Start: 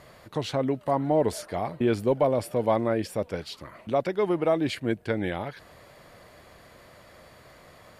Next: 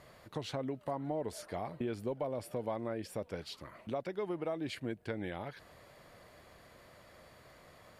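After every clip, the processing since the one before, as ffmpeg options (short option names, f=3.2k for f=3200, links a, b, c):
-af "acompressor=threshold=-29dB:ratio=3,volume=-6.5dB"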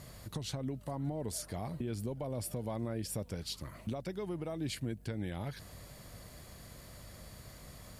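-af "bass=f=250:g=12,treble=f=4k:g=14,alimiter=level_in=4.5dB:limit=-24dB:level=0:latency=1:release=305,volume=-4.5dB,aeval=exprs='val(0)+0.00158*(sin(2*PI*50*n/s)+sin(2*PI*2*50*n/s)/2+sin(2*PI*3*50*n/s)/3+sin(2*PI*4*50*n/s)/4+sin(2*PI*5*50*n/s)/5)':c=same"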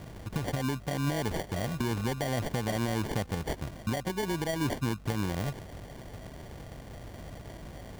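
-af "acrusher=samples=34:mix=1:aa=0.000001,volume=7dB"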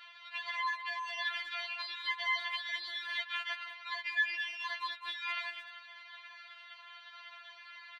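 -filter_complex "[0:a]asuperpass=centerf=2200:order=8:qfactor=0.73,asplit=2[a][b];[b]adelay=200,highpass=300,lowpass=3.4k,asoftclip=type=hard:threshold=-32dB,volume=-9dB[c];[a][c]amix=inputs=2:normalize=0,afftfilt=real='re*4*eq(mod(b,16),0)':imag='im*4*eq(mod(b,16),0)':win_size=2048:overlap=0.75,volume=8.5dB"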